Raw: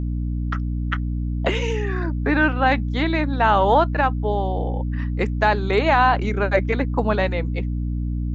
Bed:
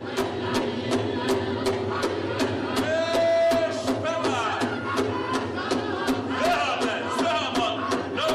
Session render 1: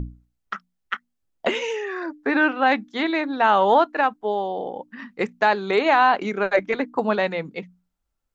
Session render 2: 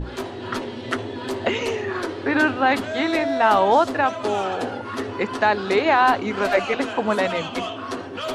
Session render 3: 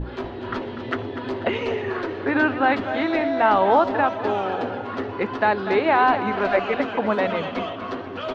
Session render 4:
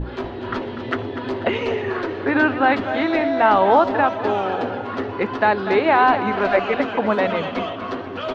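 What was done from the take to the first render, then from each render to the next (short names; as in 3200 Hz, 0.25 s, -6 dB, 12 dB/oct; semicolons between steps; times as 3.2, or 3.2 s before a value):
notches 60/120/180/240/300 Hz
add bed -4 dB
air absorption 240 m; feedback echo 0.245 s, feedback 48%, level -11 dB
gain +2.5 dB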